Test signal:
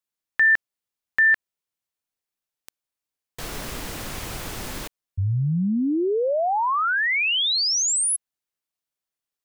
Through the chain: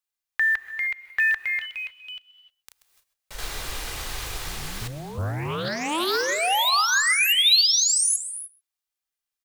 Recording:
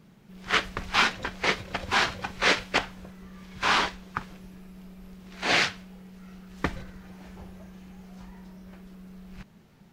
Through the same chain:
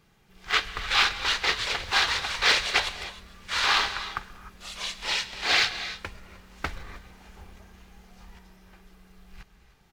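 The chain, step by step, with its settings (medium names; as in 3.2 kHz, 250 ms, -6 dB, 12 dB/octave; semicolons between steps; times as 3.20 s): comb 2.5 ms, depth 35%; ever faster or slower copies 460 ms, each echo +3 st, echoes 3, each echo -6 dB; dynamic bell 4 kHz, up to +6 dB, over -43 dBFS, Q 3.1; delay 130 ms -24 dB; short-mantissa float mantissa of 4-bit; peaking EQ 240 Hz -10.5 dB 2.6 oct; gated-style reverb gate 330 ms rising, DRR 11.5 dB; loudspeaker Doppler distortion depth 0.41 ms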